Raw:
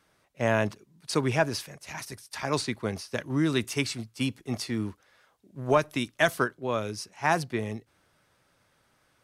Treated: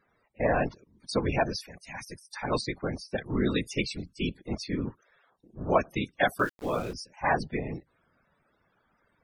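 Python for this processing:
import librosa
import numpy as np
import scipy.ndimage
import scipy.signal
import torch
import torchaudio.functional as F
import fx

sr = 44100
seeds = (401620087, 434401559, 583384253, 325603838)

y = fx.whisperise(x, sr, seeds[0])
y = fx.spec_topn(y, sr, count=64)
y = fx.sample_gate(y, sr, floor_db=-41.0, at=(6.38, 6.92), fade=0.02)
y = y * librosa.db_to_amplitude(-1.0)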